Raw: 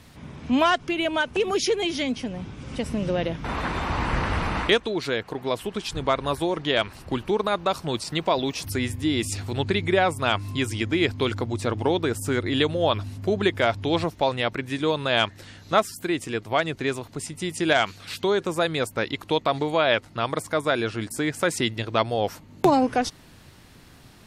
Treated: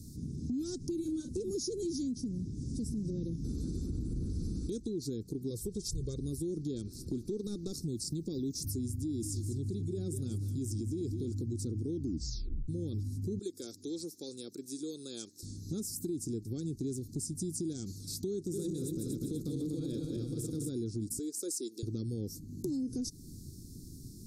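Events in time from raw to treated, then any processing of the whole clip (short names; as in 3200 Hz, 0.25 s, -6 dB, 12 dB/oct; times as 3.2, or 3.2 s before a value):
0.96–1.39 doubler 38 ms -6 dB
3.86–4.3 bell 5200 Hz -8 dB 0.96 oct
5.5–6.18 comb 1.9 ms, depth 71%
6.87–7.82 overdrive pedal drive 12 dB, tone 3400 Hz, clips at -10 dBFS
8.94–11.3 feedback echo 0.2 s, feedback 25%, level -13 dB
11.91 tape stop 0.77 s
13.39–15.43 HPF 610 Hz
18.34–20.69 regenerating reverse delay 0.122 s, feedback 71%, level -2 dB
21.19–21.83 HPF 390 Hz 24 dB/oct
whole clip: inverse Chebyshev band-stop 610–3100 Hz, stop band 40 dB; limiter -24.5 dBFS; compressor 2.5:1, threshold -40 dBFS; gain +3.5 dB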